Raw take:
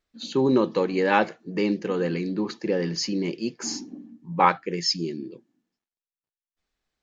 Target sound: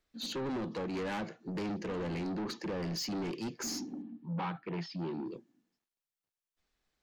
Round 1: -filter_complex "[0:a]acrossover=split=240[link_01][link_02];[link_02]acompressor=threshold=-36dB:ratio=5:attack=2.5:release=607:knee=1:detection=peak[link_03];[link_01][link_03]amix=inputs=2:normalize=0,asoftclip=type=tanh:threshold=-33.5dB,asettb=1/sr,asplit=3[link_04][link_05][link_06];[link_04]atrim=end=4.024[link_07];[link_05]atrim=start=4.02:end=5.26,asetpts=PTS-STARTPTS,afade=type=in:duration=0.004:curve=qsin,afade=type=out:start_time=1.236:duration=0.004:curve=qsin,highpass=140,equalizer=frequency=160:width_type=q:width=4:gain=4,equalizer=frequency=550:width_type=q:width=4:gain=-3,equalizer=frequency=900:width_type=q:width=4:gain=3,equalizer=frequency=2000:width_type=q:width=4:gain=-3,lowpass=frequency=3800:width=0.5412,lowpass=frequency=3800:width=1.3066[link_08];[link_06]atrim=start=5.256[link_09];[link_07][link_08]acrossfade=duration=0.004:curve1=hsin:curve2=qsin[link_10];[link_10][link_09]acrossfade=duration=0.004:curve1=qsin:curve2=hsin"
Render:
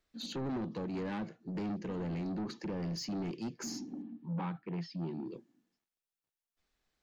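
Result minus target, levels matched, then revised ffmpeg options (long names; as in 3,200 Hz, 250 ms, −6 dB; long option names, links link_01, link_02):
downward compressor: peak gain reduction +8 dB
-filter_complex "[0:a]acrossover=split=240[link_01][link_02];[link_02]acompressor=threshold=-26dB:ratio=5:attack=2.5:release=607:knee=1:detection=peak[link_03];[link_01][link_03]amix=inputs=2:normalize=0,asoftclip=type=tanh:threshold=-33.5dB,asettb=1/sr,asplit=3[link_04][link_05][link_06];[link_04]atrim=end=4.024[link_07];[link_05]atrim=start=4.02:end=5.26,asetpts=PTS-STARTPTS,afade=type=in:duration=0.004:curve=qsin,afade=type=out:start_time=1.236:duration=0.004:curve=qsin,highpass=140,equalizer=frequency=160:width_type=q:width=4:gain=4,equalizer=frequency=550:width_type=q:width=4:gain=-3,equalizer=frequency=900:width_type=q:width=4:gain=3,equalizer=frequency=2000:width_type=q:width=4:gain=-3,lowpass=frequency=3800:width=0.5412,lowpass=frequency=3800:width=1.3066[link_08];[link_06]atrim=start=5.256[link_09];[link_07][link_08]acrossfade=duration=0.004:curve1=hsin:curve2=qsin[link_10];[link_10][link_09]acrossfade=duration=0.004:curve1=qsin:curve2=hsin"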